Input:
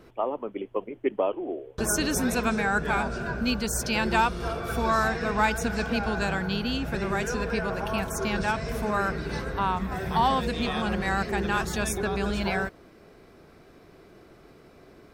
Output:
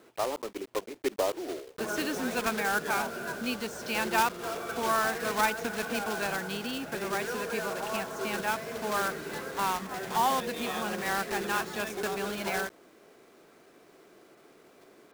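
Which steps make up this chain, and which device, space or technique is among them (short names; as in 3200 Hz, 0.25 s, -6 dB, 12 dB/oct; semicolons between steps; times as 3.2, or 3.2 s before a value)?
early digital voice recorder (BPF 270–3600 Hz; block floating point 3-bit); gain -3 dB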